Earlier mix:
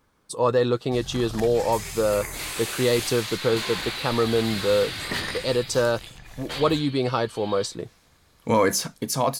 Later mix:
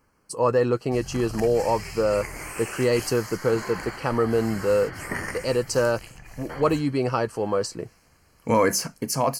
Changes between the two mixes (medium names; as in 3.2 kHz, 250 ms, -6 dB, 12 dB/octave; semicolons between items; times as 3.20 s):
second sound: add Savitzky-Golay filter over 41 samples; master: add Butterworth band-stop 3.6 kHz, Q 2.9